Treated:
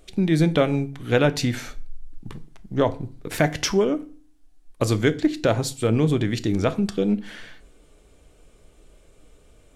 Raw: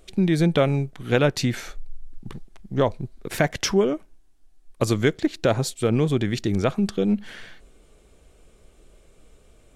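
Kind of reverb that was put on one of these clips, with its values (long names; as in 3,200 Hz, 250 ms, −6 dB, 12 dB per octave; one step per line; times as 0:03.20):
feedback delay network reverb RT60 0.42 s, low-frequency decay 1.3×, high-frequency decay 0.85×, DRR 11 dB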